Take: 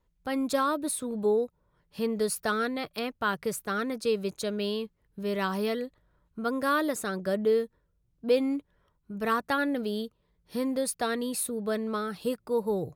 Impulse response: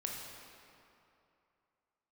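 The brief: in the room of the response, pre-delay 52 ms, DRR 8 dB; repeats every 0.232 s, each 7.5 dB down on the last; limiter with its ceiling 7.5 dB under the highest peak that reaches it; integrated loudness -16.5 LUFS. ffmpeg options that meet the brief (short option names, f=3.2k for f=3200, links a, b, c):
-filter_complex "[0:a]alimiter=limit=-21.5dB:level=0:latency=1,aecho=1:1:232|464|696|928|1160:0.422|0.177|0.0744|0.0312|0.0131,asplit=2[a][b];[1:a]atrim=start_sample=2205,adelay=52[c];[b][c]afir=irnorm=-1:irlink=0,volume=-9dB[d];[a][d]amix=inputs=2:normalize=0,volume=14dB"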